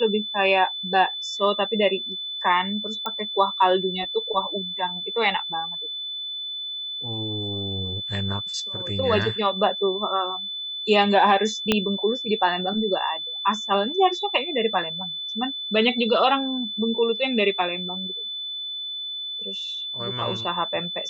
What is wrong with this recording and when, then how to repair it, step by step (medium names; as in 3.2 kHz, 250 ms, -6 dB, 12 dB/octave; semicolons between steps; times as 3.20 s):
whine 3.5 kHz -29 dBFS
3.06 s: pop -14 dBFS
11.72 s: pop -5 dBFS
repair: de-click; band-stop 3.5 kHz, Q 30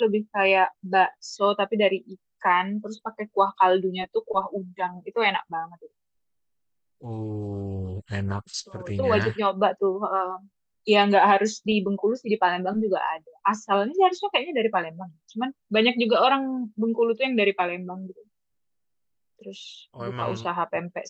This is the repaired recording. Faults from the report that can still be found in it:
11.72 s: pop